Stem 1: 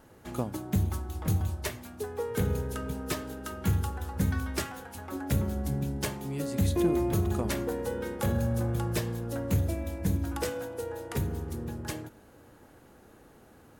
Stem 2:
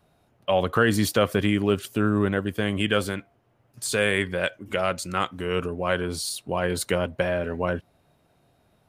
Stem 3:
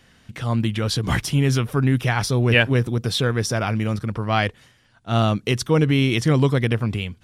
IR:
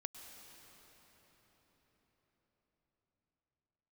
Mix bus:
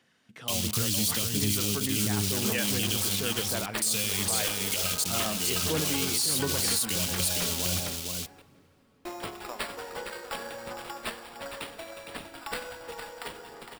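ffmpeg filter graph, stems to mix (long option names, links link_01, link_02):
-filter_complex "[0:a]highpass=840,acrusher=samples=7:mix=1:aa=0.000001,adelay=2100,volume=-1dB,asplit=3[link_01][link_02][link_03];[link_01]atrim=end=7.96,asetpts=PTS-STARTPTS,afade=type=out:start_time=7.956:duration=0.004:curve=hsin[link_04];[link_02]atrim=start=7.96:end=9.05,asetpts=PTS-STARTPTS,volume=0[link_05];[link_03]atrim=start=9.05,asetpts=PTS-STARTPTS,afade=type=in:duration=0.004:curve=hsin[link_06];[link_04][link_05][link_06]concat=n=3:v=0:a=1,asplit=3[link_07][link_08][link_09];[link_08]volume=-4.5dB[link_10];[link_09]volume=-5.5dB[link_11];[1:a]acrossover=split=230[link_12][link_13];[link_13]acompressor=threshold=-36dB:ratio=8[link_14];[link_12][link_14]amix=inputs=2:normalize=0,acrusher=bits=6:mix=0:aa=0.000001,aexciter=amount=8.5:drive=6.3:freq=2500,volume=-4.5dB,asplit=3[link_15][link_16][link_17];[link_16]volume=-17.5dB[link_18];[link_17]volume=-3.5dB[link_19];[2:a]highpass=200,volume=-14.5dB,asplit=2[link_20][link_21];[link_21]volume=-5dB[link_22];[3:a]atrim=start_sample=2205[link_23];[link_10][link_18][link_22]amix=inputs=3:normalize=0[link_24];[link_24][link_23]afir=irnorm=-1:irlink=0[link_25];[link_11][link_19]amix=inputs=2:normalize=0,aecho=0:1:460:1[link_26];[link_07][link_15][link_20][link_25][link_26]amix=inputs=5:normalize=0,aphaser=in_gain=1:out_gain=1:delay=4.6:decay=0.27:speed=1.4:type=sinusoidal,alimiter=limit=-17dB:level=0:latency=1:release=27"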